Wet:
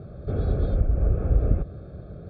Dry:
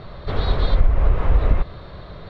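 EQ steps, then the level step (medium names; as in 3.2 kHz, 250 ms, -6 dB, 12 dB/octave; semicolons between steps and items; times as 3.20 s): boxcar filter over 45 samples; high-pass 58 Hz; +1.0 dB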